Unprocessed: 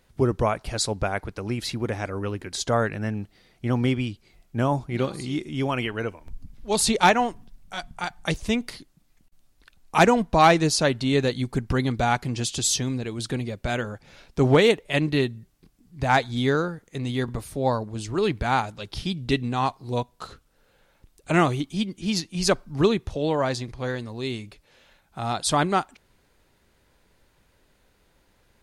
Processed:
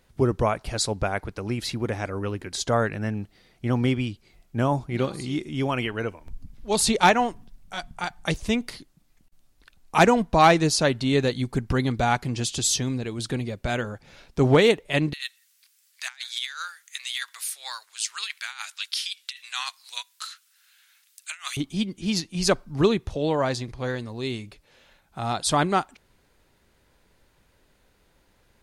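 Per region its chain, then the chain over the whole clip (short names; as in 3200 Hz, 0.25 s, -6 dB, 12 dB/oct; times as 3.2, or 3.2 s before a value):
15.13–21.57 HPF 1500 Hz 24 dB/oct + negative-ratio compressor -36 dBFS, ratio -0.5 + high shelf 3100 Hz +9.5 dB
whole clip: dry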